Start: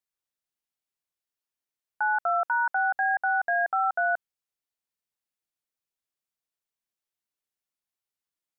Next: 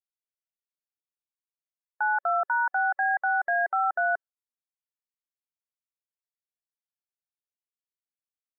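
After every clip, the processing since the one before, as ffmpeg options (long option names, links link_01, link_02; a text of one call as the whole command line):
ffmpeg -i in.wav -af "afftdn=noise_reduction=18:noise_floor=-47" out.wav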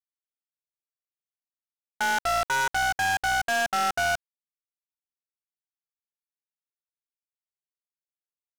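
ffmpeg -i in.wav -af "acontrast=29,acrusher=bits=4:dc=4:mix=0:aa=0.000001,adynamicsmooth=sensitivity=5.5:basefreq=1100,volume=-6dB" out.wav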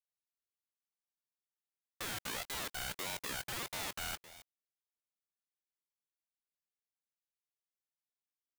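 ffmpeg -i in.wav -af "aeval=exprs='(mod(21.1*val(0)+1,2)-1)/21.1':channel_layout=same,aecho=1:1:266:0.178,aeval=exprs='val(0)*sin(2*PI*1100*n/s+1100*0.35/1.6*sin(2*PI*1.6*n/s))':channel_layout=same,volume=-4dB" out.wav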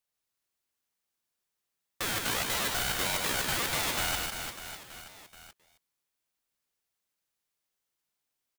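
ffmpeg -i in.wav -af "aecho=1:1:150|345|598.5|928|1356:0.631|0.398|0.251|0.158|0.1,volume=8.5dB" out.wav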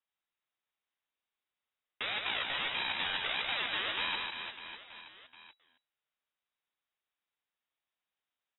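ffmpeg -i in.wav -af "lowpass=frequency=3300:width_type=q:width=0.5098,lowpass=frequency=3300:width_type=q:width=0.6013,lowpass=frequency=3300:width_type=q:width=0.9,lowpass=frequency=3300:width_type=q:width=2.563,afreqshift=-3900,volume=-1.5dB" out.wav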